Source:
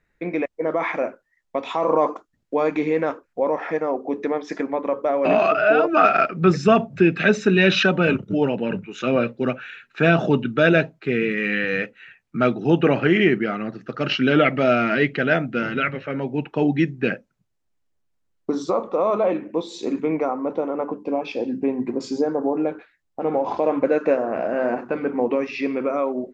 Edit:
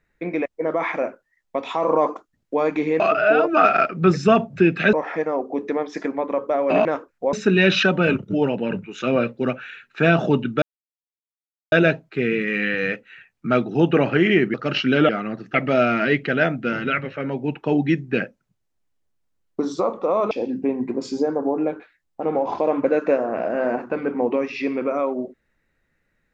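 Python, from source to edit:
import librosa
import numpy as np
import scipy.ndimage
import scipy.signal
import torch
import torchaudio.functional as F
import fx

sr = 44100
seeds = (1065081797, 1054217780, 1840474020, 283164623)

y = fx.edit(x, sr, fx.swap(start_s=3.0, length_s=0.48, other_s=5.4, other_length_s=1.93),
    fx.insert_silence(at_s=10.62, length_s=1.1),
    fx.move(start_s=13.44, length_s=0.45, to_s=14.44),
    fx.cut(start_s=19.21, length_s=2.09), tone=tone)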